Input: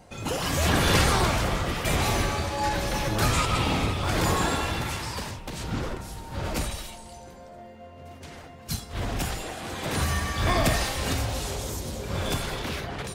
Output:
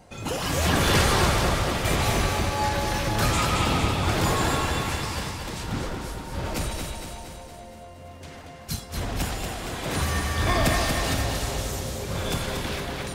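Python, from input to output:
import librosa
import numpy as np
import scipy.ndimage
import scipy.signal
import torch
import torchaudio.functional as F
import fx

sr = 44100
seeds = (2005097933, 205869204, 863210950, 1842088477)

y = fx.echo_feedback(x, sr, ms=233, feedback_pct=58, wet_db=-5.5)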